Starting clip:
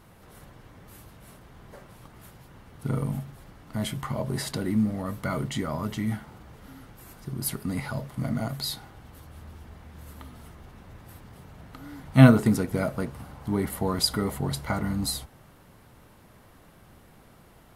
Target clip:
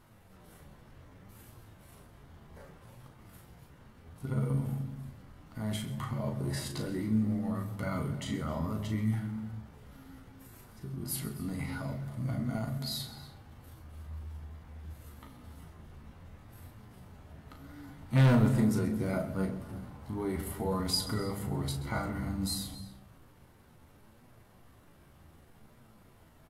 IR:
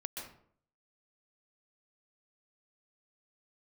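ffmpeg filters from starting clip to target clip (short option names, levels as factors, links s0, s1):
-filter_complex "[0:a]lowshelf=f=150:g=4,bandreject=f=50:t=h:w=6,bandreject=f=100:t=h:w=6,bandreject=f=150:t=h:w=6,bandreject=f=200:t=h:w=6,atempo=0.67,flanger=delay=7.9:depth=6.7:regen=53:speed=0.66:shape=triangular,asoftclip=type=hard:threshold=0.133,asplit=2[s0][s1];[s1]adelay=37,volume=0.447[s2];[s0][s2]amix=inputs=2:normalize=0,asplit=2[s3][s4];[1:a]atrim=start_sample=2205,lowshelf=f=330:g=10,adelay=131[s5];[s4][s5]afir=irnorm=-1:irlink=0,volume=0.237[s6];[s3][s6]amix=inputs=2:normalize=0,volume=0.708"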